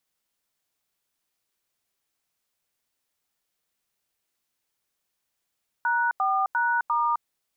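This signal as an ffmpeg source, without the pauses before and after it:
-f lavfi -i "aevalsrc='0.0668*clip(min(mod(t,0.349),0.261-mod(t,0.349))/0.002,0,1)*(eq(floor(t/0.349),0)*(sin(2*PI*941*mod(t,0.349))+sin(2*PI*1477*mod(t,0.349)))+eq(floor(t/0.349),1)*(sin(2*PI*770*mod(t,0.349))+sin(2*PI*1209*mod(t,0.349)))+eq(floor(t/0.349),2)*(sin(2*PI*941*mod(t,0.349))+sin(2*PI*1477*mod(t,0.349)))+eq(floor(t/0.349),3)*(sin(2*PI*941*mod(t,0.349))+sin(2*PI*1209*mod(t,0.349))))':d=1.396:s=44100"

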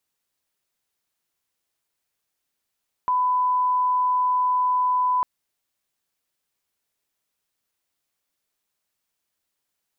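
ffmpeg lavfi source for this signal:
-f lavfi -i "sine=f=1000:d=2.15:r=44100,volume=0.06dB"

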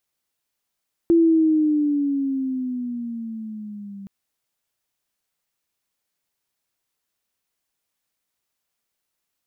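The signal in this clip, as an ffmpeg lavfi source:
-f lavfi -i "aevalsrc='pow(10,(-11.5-22.5*t/2.97)/20)*sin(2*PI*338*2.97/(-9.5*log(2)/12)*(exp(-9.5*log(2)/12*t/2.97)-1))':d=2.97:s=44100"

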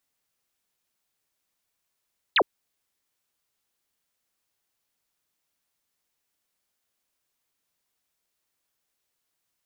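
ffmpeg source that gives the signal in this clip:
-f lavfi -i "aevalsrc='0.158*clip(t/0.002,0,1)*clip((0.06-t)/0.002,0,1)*sin(2*PI*4500*0.06/log(300/4500)*(exp(log(300/4500)*t/0.06)-1))':d=0.06:s=44100"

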